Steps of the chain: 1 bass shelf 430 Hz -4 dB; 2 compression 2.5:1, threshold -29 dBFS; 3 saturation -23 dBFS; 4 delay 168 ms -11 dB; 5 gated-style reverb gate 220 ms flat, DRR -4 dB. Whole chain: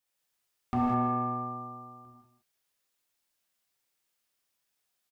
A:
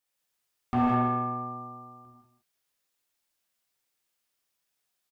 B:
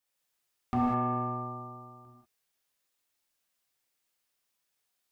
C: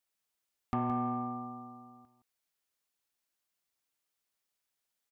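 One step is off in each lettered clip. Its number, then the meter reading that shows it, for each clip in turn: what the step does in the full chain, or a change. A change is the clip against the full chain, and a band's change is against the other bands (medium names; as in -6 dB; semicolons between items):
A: 2, 2 kHz band +5.5 dB; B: 4, loudness change -1.0 LU; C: 5, crest factor change -2.0 dB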